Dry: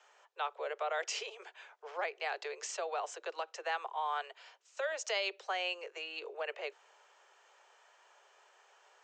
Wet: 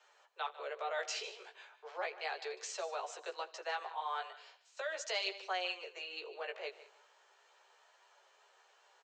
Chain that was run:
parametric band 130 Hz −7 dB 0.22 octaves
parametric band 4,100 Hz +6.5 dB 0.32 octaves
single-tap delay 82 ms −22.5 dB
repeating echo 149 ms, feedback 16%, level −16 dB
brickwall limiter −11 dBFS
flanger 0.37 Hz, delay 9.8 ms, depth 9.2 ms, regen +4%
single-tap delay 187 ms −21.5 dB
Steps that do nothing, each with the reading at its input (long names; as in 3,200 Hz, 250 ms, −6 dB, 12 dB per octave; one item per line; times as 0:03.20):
parametric band 130 Hz: nothing at its input below 300 Hz
brickwall limiter −11 dBFS: peak of its input −18.0 dBFS